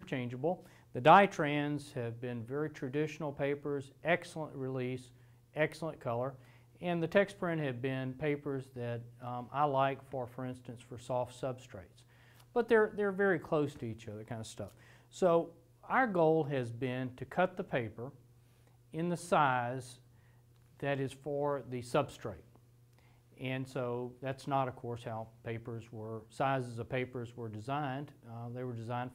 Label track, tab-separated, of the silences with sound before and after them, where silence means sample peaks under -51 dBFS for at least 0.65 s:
19.960000	20.800000	silence